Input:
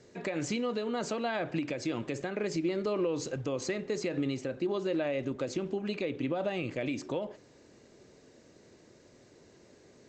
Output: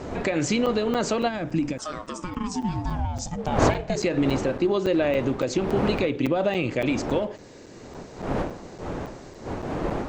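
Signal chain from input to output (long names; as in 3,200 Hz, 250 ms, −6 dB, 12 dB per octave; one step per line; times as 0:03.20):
wind on the microphone 570 Hz −40 dBFS
0:01.77–0:03.95: ring modulation 1,000 Hz → 230 Hz
0:01.28–0:03.39: gain on a spectral selection 340–4,800 Hz −9 dB
in parallel at −3 dB: downward compressor, threshold −45 dBFS, peak gain reduction 20.5 dB
on the sum: regular buffer underruns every 0.28 s, samples 256, zero, from 0:00.66
level +8 dB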